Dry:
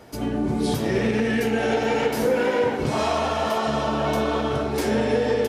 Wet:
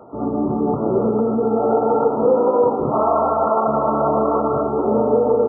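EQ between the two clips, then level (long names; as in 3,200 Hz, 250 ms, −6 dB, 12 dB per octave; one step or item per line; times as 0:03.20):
high-pass filter 310 Hz 6 dB per octave
linear-phase brick-wall low-pass 1,400 Hz
+7.5 dB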